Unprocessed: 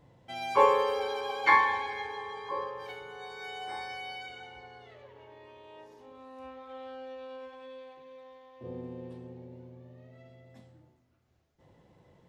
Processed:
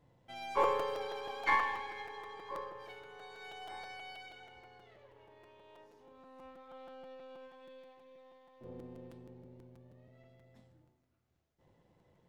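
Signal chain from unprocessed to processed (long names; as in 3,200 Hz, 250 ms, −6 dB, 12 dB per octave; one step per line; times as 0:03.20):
gain on one half-wave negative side −3 dB
regular buffer underruns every 0.16 s, samples 256, repeat, from 0:00.63
level −6.5 dB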